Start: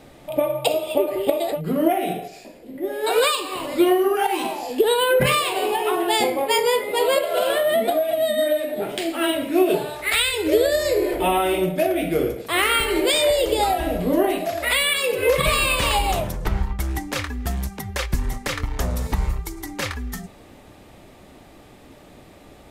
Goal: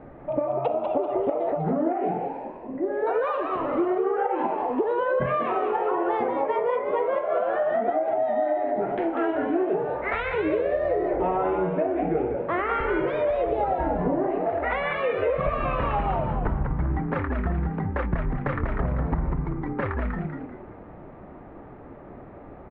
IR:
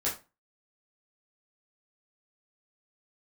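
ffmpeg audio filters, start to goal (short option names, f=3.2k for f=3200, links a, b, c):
-filter_complex "[0:a]lowpass=f=1.6k:w=0.5412,lowpass=f=1.6k:w=1.3066,acompressor=threshold=-25dB:ratio=6,asplit=5[a][b][c][d][e];[b]adelay=194,afreqshift=98,volume=-6dB[f];[c]adelay=388,afreqshift=196,volume=-15.9dB[g];[d]adelay=582,afreqshift=294,volume=-25.8dB[h];[e]adelay=776,afreqshift=392,volume=-35.7dB[i];[a][f][g][h][i]amix=inputs=5:normalize=0,volume=2.5dB"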